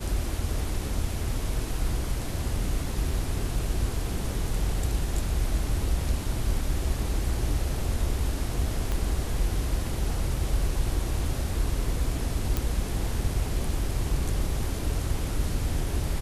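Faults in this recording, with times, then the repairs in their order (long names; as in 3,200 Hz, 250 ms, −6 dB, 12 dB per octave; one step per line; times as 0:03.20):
0:08.92: click −16 dBFS
0:12.57: click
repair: click removal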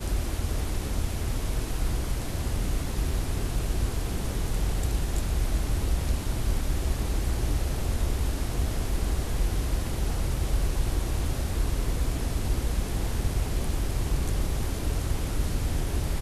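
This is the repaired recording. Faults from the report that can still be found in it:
0:08.92: click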